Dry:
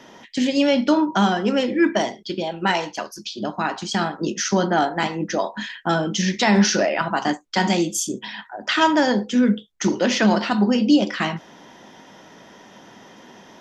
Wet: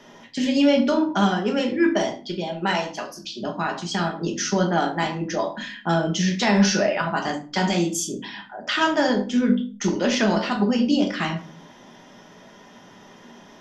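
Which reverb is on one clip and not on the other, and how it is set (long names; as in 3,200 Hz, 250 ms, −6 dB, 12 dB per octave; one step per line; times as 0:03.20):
rectangular room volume 230 cubic metres, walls furnished, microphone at 1.3 metres
level −4 dB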